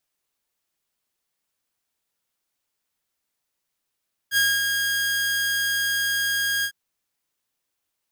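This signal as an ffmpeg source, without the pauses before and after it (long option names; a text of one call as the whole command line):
ffmpeg -f lavfi -i "aevalsrc='0.2*(2*mod(1630*t,1)-1)':duration=2.404:sample_rate=44100,afade=type=in:duration=0.06,afade=type=out:start_time=0.06:duration=0.233:silence=0.562,afade=type=out:start_time=2.33:duration=0.074" out.wav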